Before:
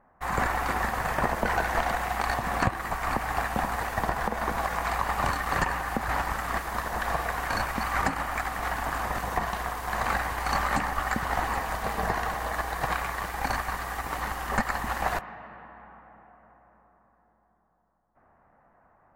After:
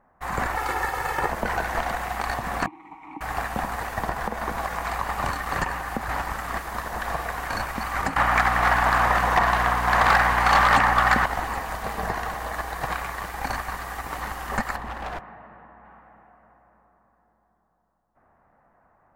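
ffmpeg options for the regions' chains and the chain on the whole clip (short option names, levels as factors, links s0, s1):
-filter_complex "[0:a]asettb=1/sr,asplit=3[s0][s1][s2];[s0]atrim=end=0.564[s3];[s1]atrim=start=0.56:end=1.29,asetpts=PTS-STARTPTS,afade=t=in:d=0.004:c=qsin,afade=t=out:st=0.726:d=0.004:c=qsin,lowshelf=f=110:g=-8.5,aecho=1:1:2.3:0.77,atrim=end_sample=32193[s4];[s2]atrim=start=1.286[s5];[s3][s4]acrossfade=d=0.004:c1=hsin:c2=qsin[s6];[s6][s5]acrossfade=d=0.004:c1=qsin:c2=hsin,asettb=1/sr,asplit=3[s7][s8][s9];[s7]atrim=end=2.664[s10];[s8]atrim=start=2.66:end=3.21,asetpts=PTS-STARTPTS,afade=t=in:d=0.004:c=qsin,afade=t=out:st=0.546:d=0.004:c=qsin,asplit=3[s11][s12][s13];[s11]bandpass=f=300:t=q:w=8,volume=1[s14];[s12]bandpass=f=870:t=q:w=8,volume=0.501[s15];[s13]bandpass=f=2240:t=q:w=8,volume=0.355[s16];[s14][s15][s16]amix=inputs=3:normalize=0,bandreject=f=4700:w=5.6,aecho=1:1:6.3:0.51,atrim=end_sample=24255[s17];[s9]atrim=start=3.206[s18];[s10][s17]acrossfade=d=0.004:c1=hsin:c2=qsin[s19];[s19][s18]acrossfade=d=0.004:c1=qsin:c2=hsin,asettb=1/sr,asplit=3[s20][s21][s22];[s20]atrim=end=8.164[s23];[s21]atrim=start=8.16:end=11.26,asetpts=PTS-STARTPTS,afade=t=in:d=0.004:c=qsin,afade=t=out:st=3.096:d=0.004:c=qsin,equalizer=f=1400:w=0.32:g=12,asoftclip=type=hard:threshold=0.266,aeval=exprs='val(0)+0.0316*(sin(2*PI*60*n/s)+sin(2*PI*2*60*n/s)/2+sin(2*PI*3*60*n/s)/3+sin(2*PI*4*60*n/s)/4+sin(2*PI*5*60*n/s)/5)':c=same[s24];[s22]atrim=start=11.256[s25];[s23][s24]acrossfade=d=0.004:c1=hsin:c2=qsin[s26];[s26][s25]acrossfade=d=0.004:c1=qsin:c2=hsin,asettb=1/sr,asplit=3[s27][s28][s29];[s27]atrim=end=14.764[s30];[s28]atrim=start=14.76:end=15.85,asetpts=PTS-STARTPTS,afade=t=in:d=0.004:c=qsin,afade=t=out:st=1.086:d=0.004:c=qsin,lowpass=f=1400:p=1,volume=26.6,asoftclip=hard,volume=0.0376[s31];[s29]atrim=start=15.846[s32];[s30][s31]acrossfade=d=0.004:c1=hsin:c2=qsin[s33];[s33][s32]acrossfade=d=0.004:c1=qsin:c2=hsin"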